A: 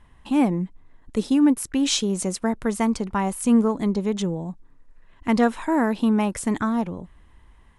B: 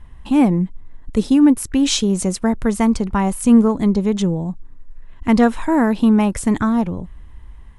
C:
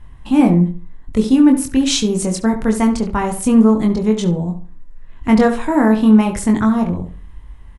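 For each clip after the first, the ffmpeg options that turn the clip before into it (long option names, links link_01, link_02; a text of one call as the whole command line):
ffmpeg -i in.wav -af "lowshelf=frequency=130:gain=12,volume=3.5dB" out.wav
ffmpeg -i in.wav -filter_complex "[0:a]asplit=2[link_01][link_02];[link_02]adelay=23,volume=-4dB[link_03];[link_01][link_03]amix=inputs=2:normalize=0,asplit=2[link_04][link_05];[link_05]adelay=69,lowpass=frequency=2400:poles=1,volume=-9.5dB,asplit=2[link_06][link_07];[link_07]adelay=69,lowpass=frequency=2400:poles=1,volume=0.32,asplit=2[link_08][link_09];[link_09]adelay=69,lowpass=frequency=2400:poles=1,volume=0.32,asplit=2[link_10][link_11];[link_11]adelay=69,lowpass=frequency=2400:poles=1,volume=0.32[link_12];[link_04][link_06][link_08][link_10][link_12]amix=inputs=5:normalize=0" out.wav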